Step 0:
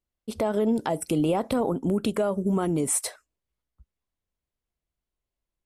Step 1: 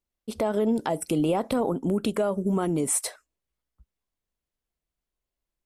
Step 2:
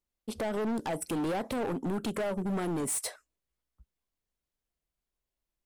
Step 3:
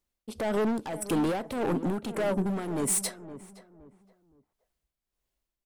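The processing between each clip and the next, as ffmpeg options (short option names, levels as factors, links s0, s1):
-af "equalizer=f=91:t=o:w=0.92:g=-5"
-af "asoftclip=type=hard:threshold=0.0447,volume=0.794"
-filter_complex "[0:a]tremolo=f=1.7:d=0.62,asplit=2[s0][s1];[s1]adelay=517,lowpass=f=1300:p=1,volume=0.224,asplit=2[s2][s3];[s3]adelay=517,lowpass=f=1300:p=1,volume=0.32,asplit=2[s4][s5];[s5]adelay=517,lowpass=f=1300:p=1,volume=0.32[s6];[s0][s2][s4][s6]amix=inputs=4:normalize=0,volume=1.88"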